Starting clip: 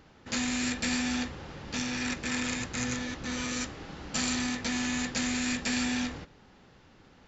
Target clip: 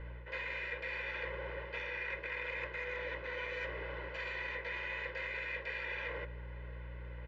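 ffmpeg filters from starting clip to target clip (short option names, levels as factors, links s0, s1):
-af "alimiter=limit=0.0668:level=0:latency=1,highpass=490,equalizer=f=540:t=q:w=4:g=5,equalizer=f=770:t=q:w=4:g=-7,equalizer=f=1300:t=q:w=4:g=-6,equalizer=f=1900:t=q:w=4:g=6,lowpass=f=2500:w=0.5412,lowpass=f=2500:w=1.3066,aeval=exprs='val(0)+0.00251*(sin(2*PI*60*n/s)+sin(2*PI*2*60*n/s)/2+sin(2*PI*3*60*n/s)/3+sin(2*PI*4*60*n/s)/4+sin(2*PI*5*60*n/s)/5)':c=same,aecho=1:1:2:0.98,areverse,acompressor=threshold=0.00891:ratio=6,areverse,volume=1.5"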